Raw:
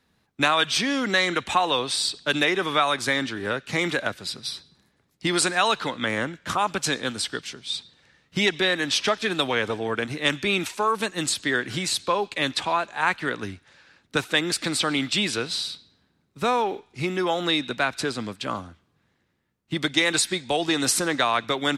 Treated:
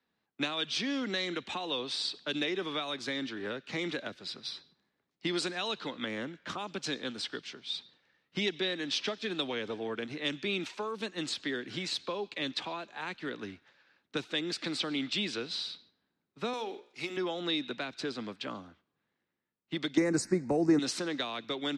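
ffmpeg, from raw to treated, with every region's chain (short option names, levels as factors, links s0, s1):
-filter_complex "[0:a]asettb=1/sr,asplit=3[s0][s1][s2];[s0]atrim=end=16.534[s3];[s1]atrim=start=16.53:end=17.17,asetpts=PTS-STARTPTS,afade=t=in:d=0.004:c=qsin,afade=t=out:st=0.636:d=0.004:c=qsin,aemphasis=mode=production:type=bsi,bandreject=f=60:t=h:w=6,bandreject=f=120:t=h:w=6,bandreject=f=180:t=h:w=6,bandreject=f=240:t=h:w=6,bandreject=f=300:t=h:w=6,bandreject=f=360:t=h:w=6,bandreject=f=420:t=h:w=6,bandreject=f=480:t=h:w=6,bandreject=f=540:t=h:w=6,bandreject=f=600:t=h:w=6[s4];[s2]atrim=start=17.166[s5];[s3][s4]acrossfade=d=0.004:c1=hsin:c2=qsin[s6];[s6][s5]acrossfade=d=0.004:c1=qsin:c2=hsin,asettb=1/sr,asplit=3[s7][s8][s9];[s7]atrim=end=19.974[s10];[s8]atrim=start=19.97:end=20.79,asetpts=PTS-STARTPTS,afade=t=in:d=0.004:c=qsin,afade=t=out:st=0.816:d=0.004:c=qsin,lowshelf=f=240:g=10,acontrast=54,asuperstop=centerf=3300:order=4:qfactor=0.75[s11];[s9]atrim=start=20.786[s12];[s10][s11]acrossfade=d=0.004:c1=hsin:c2=qsin[s13];[s13][s12]acrossfade=d=0.004:c1=qsin:c2=hsin,agate=range=0.501:threshold=0.00251:ratio=16:detection=peak,acrossover=split=180 5600:gain=0.224 1 0.0631[s14][s15][s16];[s14][s15][s16]amix=inputs=3:normalize=0,acrossover=split=450|3000[s17][s18][s19];[s18]acompressor=threshold=0.0178:ratio=6[s20];[s17][s20][s19]amix=inputs=3:normalize=0,volume=0.531"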